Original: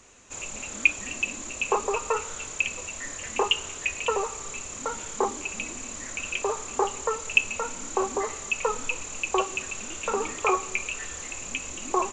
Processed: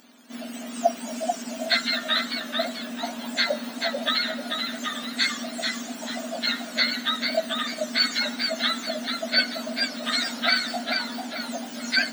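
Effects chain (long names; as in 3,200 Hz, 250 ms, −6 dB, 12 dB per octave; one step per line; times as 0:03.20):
frequency axis turned over on the octave scale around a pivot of 1,300 Hz
tilt shelving filter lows −9.5 dB
feedback echo with a swinging delay time 440 ms, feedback 41%, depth 92 cents, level −5 dB
level +1 dB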